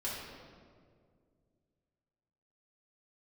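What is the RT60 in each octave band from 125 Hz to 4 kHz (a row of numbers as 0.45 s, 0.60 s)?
2.9 s, 2.7 s, 2.4 s, 1.8 s, 1.4 s, 1.2 s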